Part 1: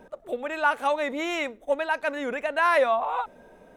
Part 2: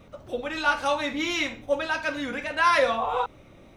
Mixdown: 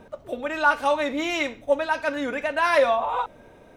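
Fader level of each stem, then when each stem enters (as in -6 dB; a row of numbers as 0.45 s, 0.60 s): +0.5 dB, -4.5 dB; 0.00 s, 0.00 s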